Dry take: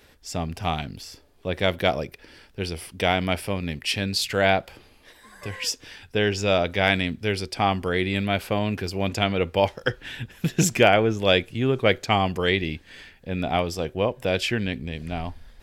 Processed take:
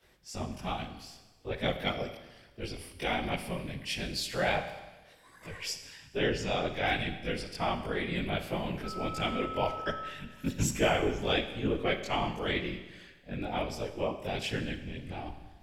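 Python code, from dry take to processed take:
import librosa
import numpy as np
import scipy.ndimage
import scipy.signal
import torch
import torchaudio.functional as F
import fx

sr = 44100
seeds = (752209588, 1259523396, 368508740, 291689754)

y = fx.whisperise(x, sr, seeds[0])
y = fx.chorus_voices(y, sr, voices=2, hz=1.2, base_ms=20, depth_ms=3.0, mix_pct=60)
y = fx.dmg_tone(y, sr, hz=1300.0, level_db=-35.0, at=(8.83, 10.08), fade=0.02)
y = fx.rev_schroeder(y, sr, rt60_s=1.2, comb_ms=30, drr_db=9.0)
y = y * librosa.db_to_amplitude(-6.5)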